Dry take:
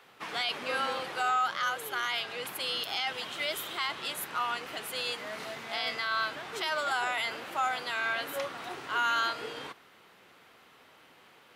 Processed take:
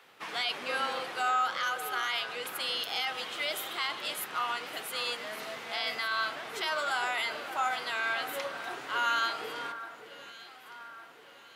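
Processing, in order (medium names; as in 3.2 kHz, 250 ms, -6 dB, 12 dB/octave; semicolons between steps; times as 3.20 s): bass shelf 130 Hz -10 dB; de-hum 45.95 Hz, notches 33; on a send: echo whose repeats swap between lows and highs 581 ms, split 1.8 kHz, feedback 66%, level -11 dB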